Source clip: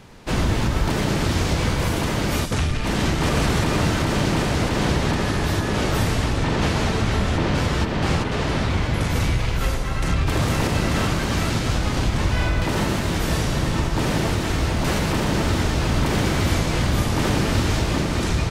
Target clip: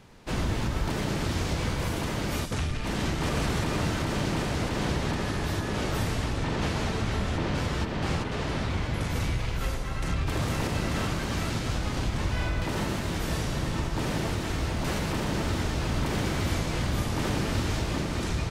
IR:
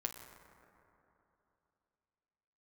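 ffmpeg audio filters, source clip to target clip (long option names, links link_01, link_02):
-af "volume=-7.5dB"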